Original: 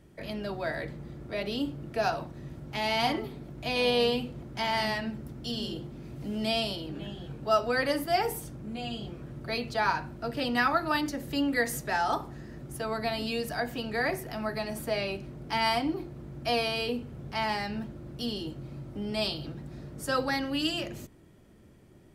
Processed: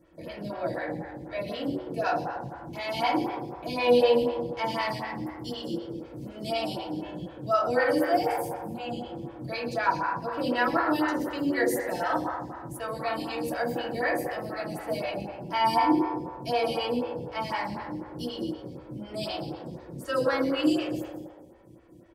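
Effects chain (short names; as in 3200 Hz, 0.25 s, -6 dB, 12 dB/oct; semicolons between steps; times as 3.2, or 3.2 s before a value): notch comb 400 Hz; frequency-shifting echo 0.128 s, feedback 40%, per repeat +86 Hz, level -12.5 dB; reverb RT60 1.6 s, pre-delay 3 ms, DRR -3.5 dB; photocell phaser 4 Hz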